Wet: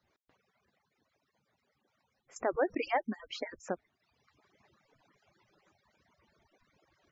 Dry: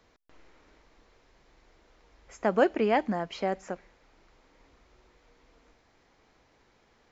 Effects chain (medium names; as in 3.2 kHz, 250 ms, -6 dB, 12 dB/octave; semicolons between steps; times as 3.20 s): harmonic-percussive separation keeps percussive; gain riding within 4 dB 0.5 s; reverb removal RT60 1.1 s; spectral gate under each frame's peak -25 dB strong; 2.36–2.97 s: level flattener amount 50%; trim -3.5 dB